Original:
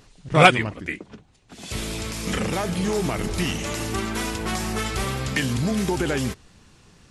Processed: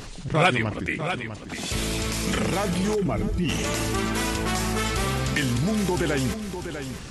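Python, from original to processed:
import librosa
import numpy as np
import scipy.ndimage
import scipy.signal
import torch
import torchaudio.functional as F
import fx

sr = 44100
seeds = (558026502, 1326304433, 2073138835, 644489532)

y = fx.spec_expand(x, sr, power=1.8, at=(2.94, 3.48), fade=0.02)
y = y + 10.0 ** (-17.0 / 20.0) * np.pad(y, (int(648 * sr / 1000.0), 0))[:len(y)]
y = fx.env_flatten(y, sr, amount_pct=50)
y = y * librosa.db_to_amplitude(-7.5)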